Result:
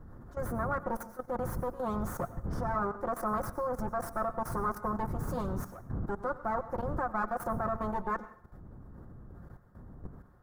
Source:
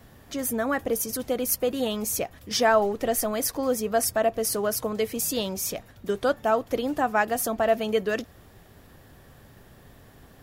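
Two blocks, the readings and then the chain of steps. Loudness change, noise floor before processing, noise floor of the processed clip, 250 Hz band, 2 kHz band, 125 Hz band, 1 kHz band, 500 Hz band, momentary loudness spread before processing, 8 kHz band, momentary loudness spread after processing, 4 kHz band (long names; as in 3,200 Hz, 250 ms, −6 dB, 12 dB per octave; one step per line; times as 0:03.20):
−9.0 dB, −52 dBFS, −58 dBFS, −7.5 dB, −11.0 dB, +4.0 dB, −4.5 dB, −11.0 dB, 7 LU, −23.0 dB, 18 LU, below −25 dB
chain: lower of the sound and its delayed copy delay 5.6 ms
wind on the microphone 140 Hz −32 dBFS
dynamic equaliser 3,500 Hz, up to −5 dB, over −47 dBFS, Q 1.3
output level in coarse steps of 15 dB
high shelf with overshoot 1,900 Hz −12.5 dB, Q 3
dense smooth reverb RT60 0.52 s, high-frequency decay 0.95×, pre-delay 80 ms, DRR 14.5 dB
level −3.5 dB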